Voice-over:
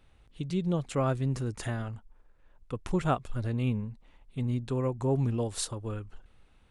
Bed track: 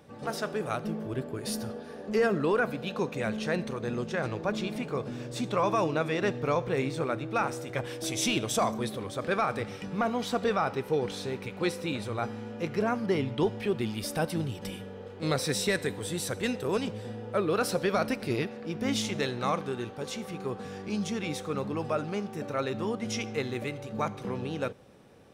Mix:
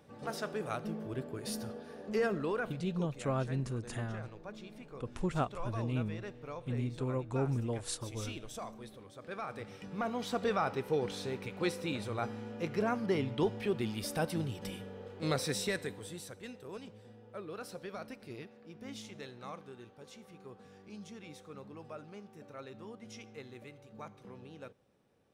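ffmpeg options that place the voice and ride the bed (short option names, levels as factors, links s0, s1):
-filter_complex "[0:a]adelay=2300,volume=0.531[s0];[1:a]volume=2.24,afade=t=out:st=2.15:d=0.94:silence=0.281838,afade=t=in:st=9.21:d=1.38:silence=0.237137,afade=t=out:st=15.31:d=1.06:silence=0.237137[s1];[s0][s1]amix=inputs=2:normalize=0"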